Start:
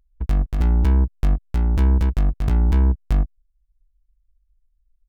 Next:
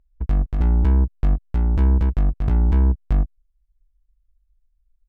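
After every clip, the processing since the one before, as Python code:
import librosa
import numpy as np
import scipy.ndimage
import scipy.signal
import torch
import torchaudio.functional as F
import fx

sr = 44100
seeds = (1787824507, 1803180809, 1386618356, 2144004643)

y = fx.lowpass(x, sr, hz=1700.0, slope=6)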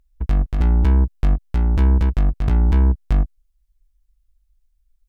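y = fx.high_shelf(x, sr, hz=2000.0, db=8.0)
y = y * librosa.db_to_amplitude(1.5)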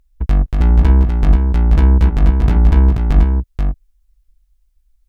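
y = x + 10.0 ** (-5.0 / 20.0) * np.pad(x, (int(483 * sr / 1000.0), 0))[:len(x)]
y = y * librosa.db_to_amplitude(4.5)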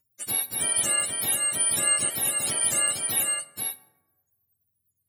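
y = fx.octave_mirror(x, sr, pivot_hz=740.0)
y = fx.rev_plate(y, sr, seeds[0], rt60_s=1.1, hf_ratio=0.45, predelay_ms=0, drr_db=13.0)
y = y * librosa.db_to_amplitude(-8.5)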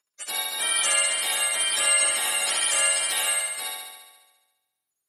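y = fx.bandpass_edges(x, sr, low_hz=710.0, high_hz=6500.0)
y = fx.room_flutter(y, sr, wall_m=11.9, rt60_s=1.2)
y = y * librosa.db_to_amplitude(5.5)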